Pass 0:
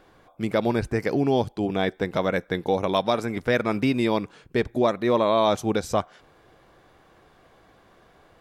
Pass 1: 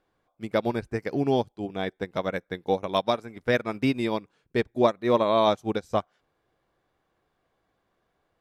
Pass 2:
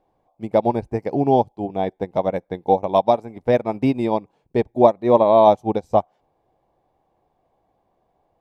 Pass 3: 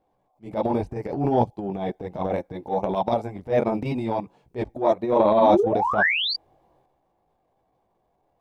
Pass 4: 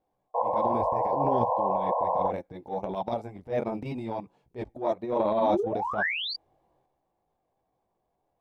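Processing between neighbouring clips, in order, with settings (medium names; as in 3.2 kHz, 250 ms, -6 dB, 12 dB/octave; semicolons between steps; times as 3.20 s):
upward expansion 2.5:1, over -31 dBFS; trim +2.5 dB
FFT filter 440 Hz 0 dB, 850 Hz +7 dB, 1.4 kHz -14 dB, 2.3 kHz -8 dB, 3.3 kHz -10 dB; trim +5.5 dB
painted sound rise, 5.40–6.34 s, 210–4800 Hz -22 dBFS; chorus voices 2, 0.69 Hz, delay 19 ms, depth 4 ms; transient shaper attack -11 dB, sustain +8 dB
painted sound noise, 0.34–2.31 s, 470–1100 Hz -19 dBFS; trim -7.5 dB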